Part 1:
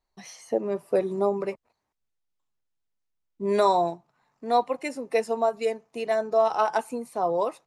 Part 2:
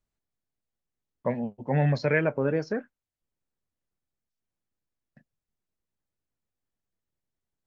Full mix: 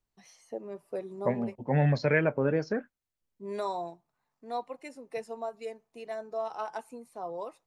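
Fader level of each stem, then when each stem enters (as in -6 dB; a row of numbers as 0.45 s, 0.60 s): -12.5 dB, -1.0 dB; 0.00 s, 0.00 s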